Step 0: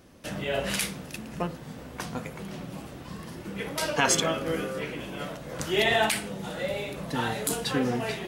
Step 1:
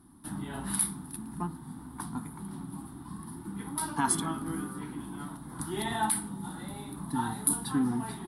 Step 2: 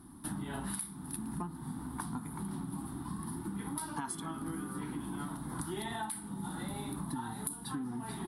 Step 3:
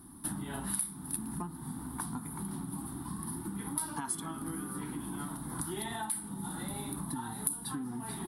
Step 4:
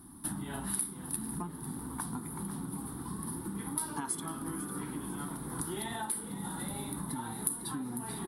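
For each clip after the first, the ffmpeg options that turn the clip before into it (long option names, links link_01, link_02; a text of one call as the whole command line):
ffmpeg -i in.wav -af "firequalizer=gain_entry='entry(110,0);entry(290,6);entry(530,-24);entry(870,5);entry(2600,-20);entry(3600,-5);entry(6700,-16);entry(10000,14);entry(15000,-16)':delay=0.05:min_phase=1,volume=-4dB" out.wav
ffmpeg -i in.wav -af "acompressor=threshold=-39dB:ratio=16,volume=4dB" out.wav
ffmpeg -i in.wav -af "highshelf=frequency=9500:gain=11.5" out.wav
ffmpeg -i in.wav -filter_complex "[0:a]asplit=6[link_01][link_02][link_03][link_04][link_05][link_06];[link_02]adelay=499,afreqshift=83,volume=-12.5dB[link_07];[link_03]adelay=998,afreqshift=166,volume=-19.1dB[link_08];[link_04]adelay=1497,afreqshift=249,volume=-25.6dB[link_09];[link_05]adelay=1996,afreqshift=332,volume=-32.2dB[link_10];[link_06]adelay=2495,afreqshift=415,volume=-38.7dB[link_11];[link_01][link_07][link_08][link_09][link_10][link_11]amix=inputs=6:normalize=0" out.wav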